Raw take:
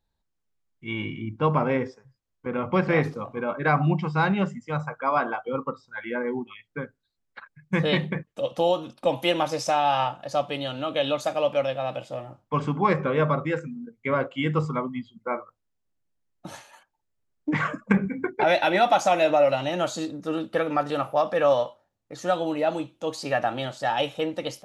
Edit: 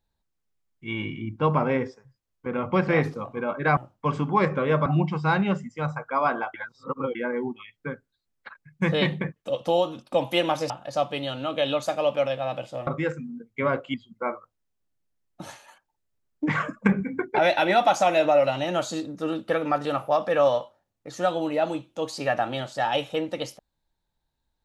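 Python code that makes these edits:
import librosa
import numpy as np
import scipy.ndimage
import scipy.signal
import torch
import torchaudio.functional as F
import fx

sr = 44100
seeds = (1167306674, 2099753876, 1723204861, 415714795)

y = fx.edit(x, sr, fx.reverse_span(start_s=5.45, length_s=0.61),
    fx.cut(start_s=9.61, length_s=0.47),
    fx.move(start_s=12.25, length_s=1.09, to_s=3.77),
    fx.cut(start_s=14.41, length_s=0.58), tone=tone)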